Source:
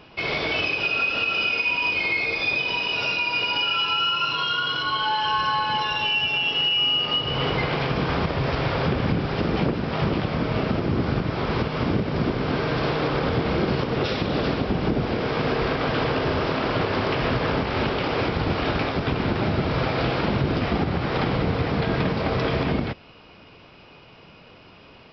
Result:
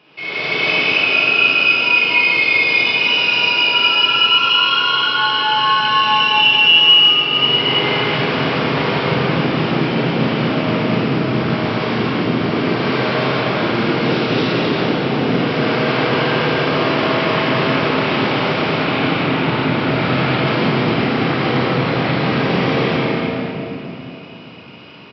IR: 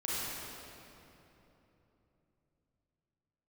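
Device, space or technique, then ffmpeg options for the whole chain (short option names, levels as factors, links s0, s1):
stadium PA: -filter_complex "[0:a]highpass=f=130:w=0.5412,highpass=f=130:w=1.3066,equalizer=f=2700:t=o:w=1.4:g=6,aecho=1:1:236.2|271.1:1|0.794[s0];[1:a]atrim=start_sample=2205[s1];[s0][s1]afir=irnorm=-1:irlink=0,asettb=1/sr,asplit=3[s2][s3][s4];[s2]atrim=end=18.824[s5];[s3]atrim=start=18.82:end=20.47,asetpts=PTS-STARTPTS,afade=t=in:d=0.004:c=qsin,afade=t=out:st=1.646:d=0.004:c=qsin,lowpass=5100[s6];[s4]atrim=start=20.466[s7];[s5][s6]acrossfade=d=0.004:c1=hsin:c2=qsin[s8];[s8][s7]acrossfade=d=0.004:c1=qsin:c2=hsin,volume=0.596"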